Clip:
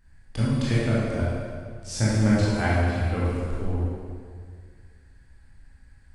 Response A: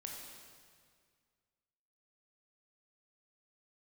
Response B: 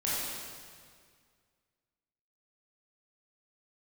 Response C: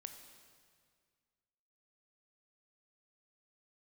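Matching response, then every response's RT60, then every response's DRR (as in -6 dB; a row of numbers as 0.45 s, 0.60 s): B; 1.9 s, 1.9 s, 1.9 s; -0.5 dB, -8.5 dB, 6.5 dB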